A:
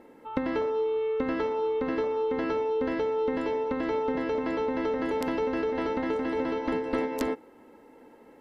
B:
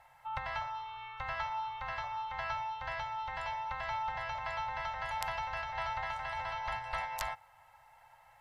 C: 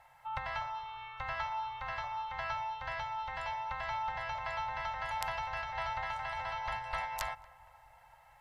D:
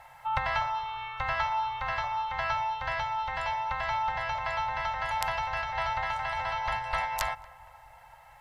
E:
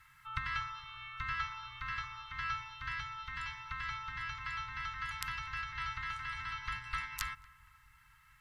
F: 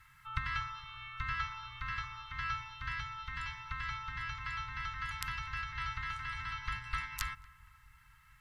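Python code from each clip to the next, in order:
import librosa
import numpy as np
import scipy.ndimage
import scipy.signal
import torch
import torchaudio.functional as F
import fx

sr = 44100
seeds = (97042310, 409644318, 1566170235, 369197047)

y1 = scipy.signal.sosfilt(scipy.signal.ellip(3, 1.0, 40, [130.0, 720.0], 'bandstop', fs=sr, output='sos'), x)
y2 = fx.echo_filtered(y1, sr, ms=231, feedback_pct=74, hz=1100.0, wet_db=-18.0)
y3 = fx.rider(y2, sr, range_db=3, speed_s=2.0)
y3 = y3 * librosa.db_to_amplitude(7.0)
y4 = scipy.signal.sosfilt(scipy.signal.cheby1(3, 1.0, [310.0, 1200.0], 'bandstop', fs=sr, output='sos'), y3)
y4 = y4 * librosa.db_to_amplitude(-5.0)
y5 = fx.low_shelf(y4, sr, hz=210.0, db=5.0)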